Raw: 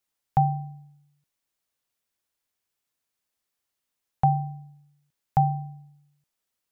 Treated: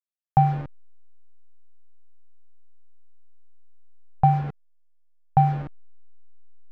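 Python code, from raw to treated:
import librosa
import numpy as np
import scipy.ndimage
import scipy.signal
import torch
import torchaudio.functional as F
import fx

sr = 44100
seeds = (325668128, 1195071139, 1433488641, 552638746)

y = fx.delta_hold(x, sr, step_db=-31.0)
y = scipy.signal.sosfilt(scipy.signal.butter(2, 1700.0, 'lowpass', fs=sr, output='sos'), y)
y = F.gain(torch.from_numpy(y), 3.5).numpy()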